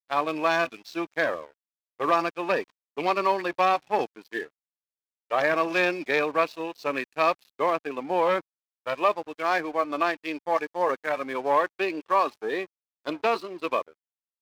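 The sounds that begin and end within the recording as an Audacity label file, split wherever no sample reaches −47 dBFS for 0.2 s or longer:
2.000000	2.700000	sound
2.970000	4.480000	sound
5.300000	8.410000	sound
8.860000	12.660000	sound
13.050000	13.920000	sound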